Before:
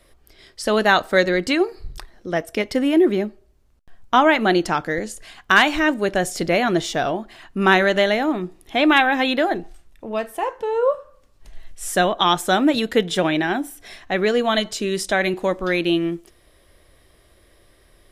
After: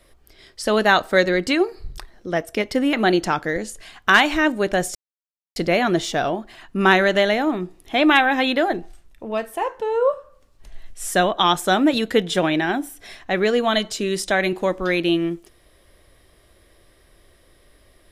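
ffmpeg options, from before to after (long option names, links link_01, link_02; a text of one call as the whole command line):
ffmpeg -i in.wav -filter_complex "[0:a]asplit=3[link_01][link_02][link_03];[link_01]atrim=end=2.932[link_04];[link_02]atrim=start=4.348:end=6.37,asetpts=PTS-STARTPTS,afade=type=out:start_time=2.018:duration=0.004:curve=hsin,apad=pad_dur=0.61[link_05];[link_03]atrim=start=6.37,asetpts=PTS-STARTPTS,afade=type=in:duration=0.004:curve=hsin[link_06];[link_05][link_06]concat=n=2:v=0:a=1[link_07];[link_04][link_07]acrossfade=duration=0.004:curve1=hsin:curve2=hsin" out.wav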